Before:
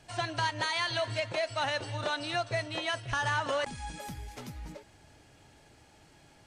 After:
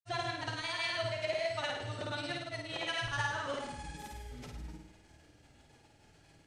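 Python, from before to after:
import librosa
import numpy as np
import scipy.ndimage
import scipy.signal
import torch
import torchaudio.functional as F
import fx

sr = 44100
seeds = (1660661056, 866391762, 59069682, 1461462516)

y = fx.rotary(x, sr, hz=7.5)
y = fx.granulator(y, sr, seeds[0], grain_ms=100.0, per_s=20.0, spray_ms=100.0, spread_st=0)
y = fx.room_flutter(y, sr, wall_m=9.1, rt60_s=0.72)
y = F.gain(torch.from_numpy(y), -2.0).numpy()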